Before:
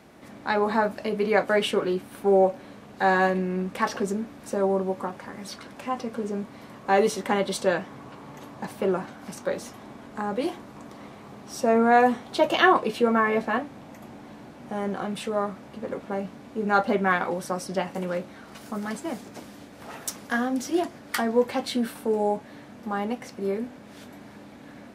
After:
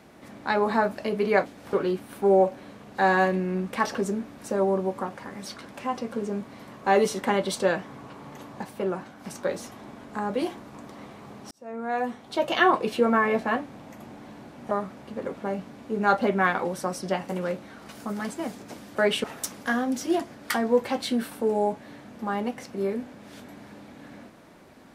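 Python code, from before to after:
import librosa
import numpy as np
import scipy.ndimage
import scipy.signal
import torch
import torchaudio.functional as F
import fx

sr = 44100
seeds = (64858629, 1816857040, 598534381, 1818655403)

y = fx.edit(x, sr, fx.swap(start_s=1.46, length_s=0.29, other_s=19.61, other_length_s=0.27),
    fx.clip_gain(start_s=8.64, length_s=0.63, db=-3.5),
    fx.fade_in_span(start_s=11.53, length_s=1.4),
    fx.cut(start_s=14.73, length_s=0.64), tone=tone)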